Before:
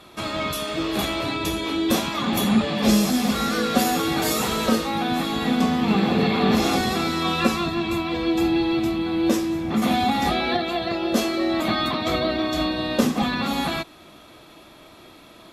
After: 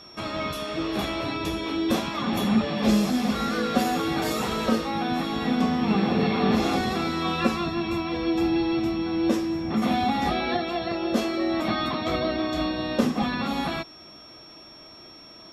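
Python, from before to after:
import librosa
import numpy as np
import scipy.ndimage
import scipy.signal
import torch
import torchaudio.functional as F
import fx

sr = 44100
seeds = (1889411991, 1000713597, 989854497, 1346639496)

y = x + 10.0 ** (-38.0 / 20.0) * np.sin(2.0 * np.pi * 5500.0 * np.arange(len(x)) / sr)
y = fx.high_shelf(y, sr, hz=5300.0, db=-10.5)
y = y * 10.0 ** (-2.5 / 20.0)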